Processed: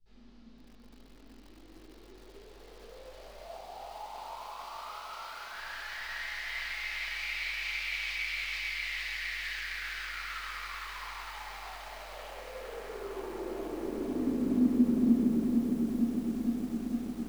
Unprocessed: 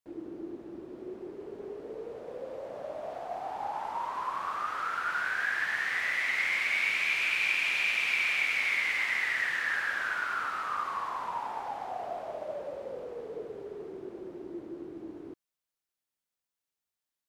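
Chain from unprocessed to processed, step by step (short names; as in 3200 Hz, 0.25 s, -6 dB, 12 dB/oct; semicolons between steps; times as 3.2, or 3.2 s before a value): high shelf 2800 Hz -6.5 dB; limiter -31.5 dBFS, peak gain reduction 12 dB; band-pass sweep 4700 Hz -> 360 Hz, 11.83–14.34; hum 50 Hz, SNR 26 dB; frequency shift -96 Hz; 3.44–5.53 speaker cabinet 170–9400 Hz, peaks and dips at 620 Hz +7 dB, 920 Hz +4 dB, 1700 Hz -8 dB; diffused feedback echo 0.762 s, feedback 64%, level -14.5 dB; shoebox room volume 170 m³, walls mixed, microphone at 4.1 m; lo-fi delay 0.458 s, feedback 80%, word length 9-bit, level -3.5 dB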